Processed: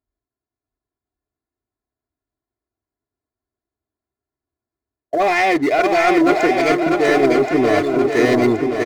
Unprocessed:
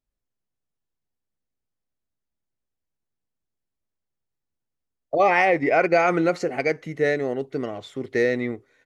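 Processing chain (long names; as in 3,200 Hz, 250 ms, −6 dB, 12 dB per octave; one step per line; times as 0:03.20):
adaptive Wiener filter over 15 samples
high-pass filter 62 Hz
high-shelf EQ 4,900 Hz +7 dB
comb filter 2.9 ms, depth 77%
reversed playback
downward compressor, threshold −26 dBFS, peak gain reduction 14 dB
reversed playback
leveller curve on the samples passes 2
on a send: feedback echo with a long and a short gap by turns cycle 1,075 ms, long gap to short 1.5 to 1, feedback 49%, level −4 dB
on the sum: level +7 dB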